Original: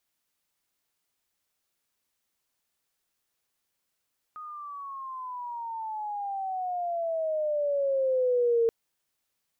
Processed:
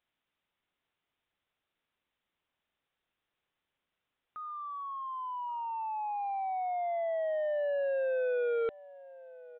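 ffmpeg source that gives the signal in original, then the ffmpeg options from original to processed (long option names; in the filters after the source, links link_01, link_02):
-f lavfi -i "aevalsrc='pow(10,(-20+18*(t/4.33-1))/20)*sin(2*PI*1250*4.33/(-17.5*log(2)/12)*(exp(-17.5*log(2)/12*t/4.33)-1))':duration=4.33:sample_rate=44100"
-filter_complex "[0:a]aresample=8000,asoftclip=type=tanh:threshold=-28.5dB,aresample=44100,asplit=2[link_01][link_02];[link_02]adelay=1127,lowpass=frequency=1100:poles=1,volume=-19dB,asplit=2[link_03][link_04];[link_04]adelay=1127,lowpass=frequency=1100:poles=1,volume=0.42,asplit=2[link_05][link_06];[link_06]adelay=1127,lowpass=frequency=1100:poles=1,volume=0.42[link_07];[link_01][link_03][link_05][link_07]amix=inputs=4:normalize=0"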